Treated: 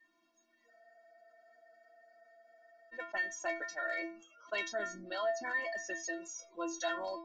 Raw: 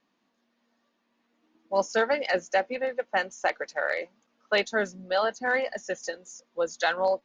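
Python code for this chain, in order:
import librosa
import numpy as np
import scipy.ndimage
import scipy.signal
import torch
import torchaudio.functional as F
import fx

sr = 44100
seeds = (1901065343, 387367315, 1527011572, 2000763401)

y = fx.noise_reduce_blind(x, sr, reduce_db=27)
y = fx.stiff_resonator(y, sr, f0_hz=330.0, decay_s=0.24, stiffness=0.008)
y = fx.spec_freeze(y, sr, seeds[0], at_s=0.72, hold_s=2.21)
y = fx.env_flatten(y, sr, amount_pct=50)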